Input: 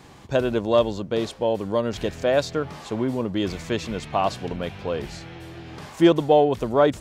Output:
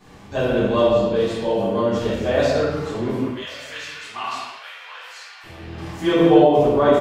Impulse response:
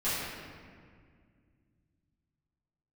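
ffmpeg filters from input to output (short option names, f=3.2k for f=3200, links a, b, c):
-filter_complex "[0:a]asettb=1/sr,asplit=3[a][b][c];[a]atrim=end=3.094[d];[b]atrim=start=3.09:end=5.44,asetpts=PTS-STARTPTS,afade=t=in:d=0.004:c=qsin,afade=t=out:st=2.346:d=0.004:c=qsin,highpass=f=1.1k:w=0.5412,highpass=f=1.1k:w=1.3066[e];[c]atrim=start=5.436[f];[d][e]acrossfade=d=0.004:c1=hsin:c2=qsin[g];[g][f]acrossfade=d=0.004:c1=qsin:c2=hsin,aecho=1:1:1141:0.0668[h];[1:a]atrim=start_sample=2205,afade=t=out:st=0.41:d=0.01,atrim=end_sample=18522[i];[h][i]afir=irnorm=-1:irlink=0,volume=-5.5dB"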